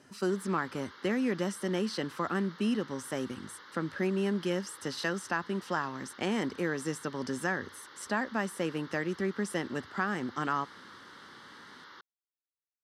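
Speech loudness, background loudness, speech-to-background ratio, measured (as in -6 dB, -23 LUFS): -33.5 LUFS, -50.5 LUFS, 17.0 dB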